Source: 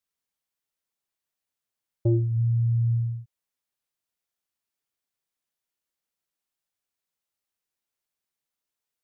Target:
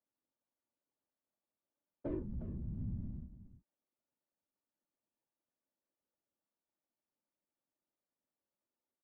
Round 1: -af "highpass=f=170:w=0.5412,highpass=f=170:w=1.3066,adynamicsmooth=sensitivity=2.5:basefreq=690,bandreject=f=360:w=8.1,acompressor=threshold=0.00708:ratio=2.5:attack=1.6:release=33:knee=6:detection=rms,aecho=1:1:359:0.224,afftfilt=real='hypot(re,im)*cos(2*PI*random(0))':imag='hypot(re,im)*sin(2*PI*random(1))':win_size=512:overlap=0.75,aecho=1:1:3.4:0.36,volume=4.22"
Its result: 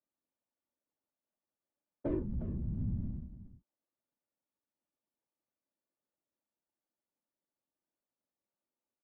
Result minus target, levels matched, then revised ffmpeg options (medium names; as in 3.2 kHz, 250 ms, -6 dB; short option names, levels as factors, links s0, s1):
compression: peak gain reduction -5 dB
-af "highpass=f=170:w=0.5412,highpass=f=170:w=1.3066,adynamicsmooth=sensitivity=2.5:basefreq=690,bandreject=f=360:w=8.1,acompressor=threshold=0.00266:ratio=2.5:attack=1.6:release=33:knee=6:detection=rms,aecho=1:1:359:0.224,afftfilt=real='hypot(re,im)*cos(2*PI*random(0))':imag='hypot(re,im)*sin(2*PI*random(1))':win_size=512:overlap=0.75,aecho=1:1:3.4:0.36,volume=4.22"